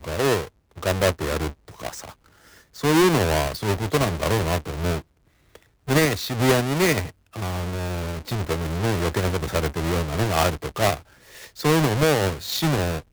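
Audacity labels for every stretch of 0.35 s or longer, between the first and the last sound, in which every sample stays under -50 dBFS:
5.020000	5.550000	silence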